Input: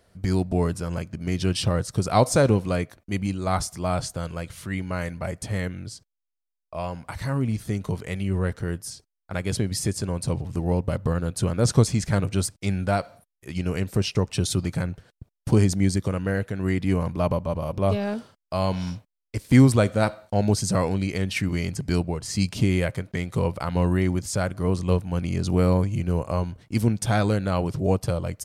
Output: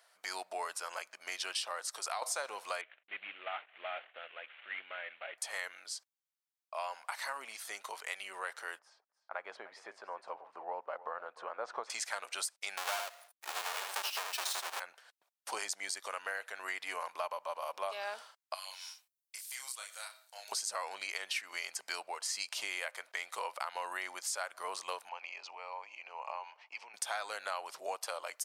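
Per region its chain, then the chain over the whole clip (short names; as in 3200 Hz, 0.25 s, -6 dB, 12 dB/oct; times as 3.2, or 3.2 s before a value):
1.79–2.22 HPF 210 Hz + compressor 4:1, threshold -25 dBFS
2.81–5.38 CVSD 16 kbps + bell 980 Hz -14.5 dB 1 oct
8.79–11.9 LPF 1200 Hz + echo 0.301 s -17 dB
12.77–14.8 half-waves squared off + notch 2000 Hz, Q 25 + echo 77 ms -5 dB
18.54–20.52 differentiator + compressor, threshold -39 dBFS + doubler 31 ms -3.5 dB
25.09–26.94 compressor, threshold -30 dBFS + speaker cabinet 290–5000 Hz, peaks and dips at 350 Hz -4 dB, 880 Hz +9 dB, 1500 Hz -6 dB, 2500 Hz +10 dB, 3700 Hz -9 dB
whole clip: HPF 770 Hz 24 dB/oct; compressor 6:1, threshold -34 dBFS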